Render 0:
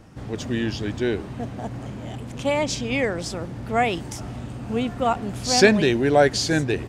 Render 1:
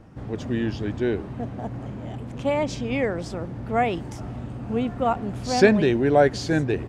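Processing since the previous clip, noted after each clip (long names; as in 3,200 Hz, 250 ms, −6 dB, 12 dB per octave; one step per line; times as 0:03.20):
high-shelf EQ 2,700 Hz −12 dB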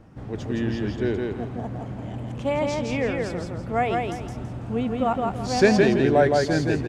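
repeating echo 165 ms, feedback 31%, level −3 dB
level −1.5 dB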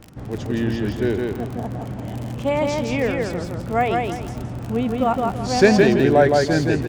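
surface crackle 65 per second −31 dBFS
level +3.5 dB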